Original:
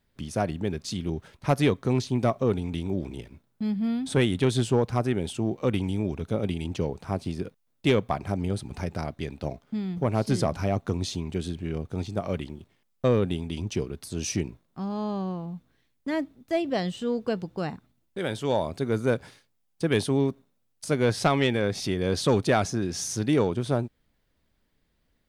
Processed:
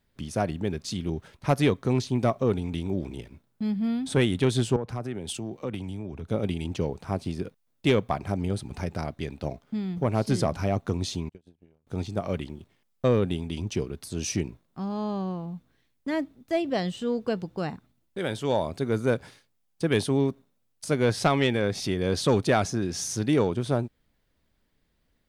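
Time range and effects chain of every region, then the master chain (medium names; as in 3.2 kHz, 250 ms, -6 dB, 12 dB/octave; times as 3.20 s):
4.76–6.30 s: compression 4:1, threshold -29 dBFS + three bands expanded up and down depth 70%
11.29–11.87 s: compression 12:1, threshold -32 dBFS + gate -35 dBFS, range -36 dB
whole clip: none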